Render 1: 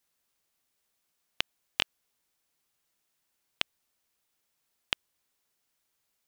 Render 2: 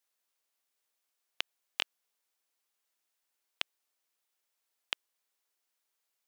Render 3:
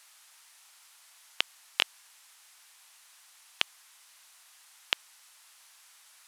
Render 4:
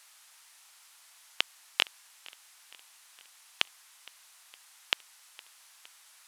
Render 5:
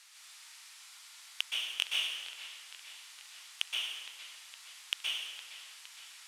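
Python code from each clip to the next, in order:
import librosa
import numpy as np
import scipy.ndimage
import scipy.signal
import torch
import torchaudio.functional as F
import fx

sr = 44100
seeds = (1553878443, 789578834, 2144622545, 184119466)

y1 = scipy.signal.sosfilt(scipy.signal.butter(2, 390.0, 'highpass', fs=sr, output='sos'), x)
y1 = y1 * 10.0 ** (-4.5 / 20.0)
y2 = fx.dmg_noise_band(y1, sr, seeds[0], low_hz=820.0, high_hz=12000.0, level_db=-65.0)
y2 = y2 * 10.0 ** (6.5 / 20.0)
y3 = fx.echo_feedback(y2, sr, ms=463, feedback_pct=59, wet_db=-23.0)
y4 = np.clip(10.0 ** (17.0 / 20.0) * y3, -1.0, 1.0) / 10.0 ** (17.0 / 20.0)
y4 = fx.bandpass_q(y4, sr, hz=3500.0, q=0.53)
y4 = fx.rev_plate(y4, sr, seeds[1], rt60_s=1.5, hf_ratio=0.8, predelay_ms=110, drr_db=-4.5)
y4 = y4 * 10.0 ** (2.0 / 20.0)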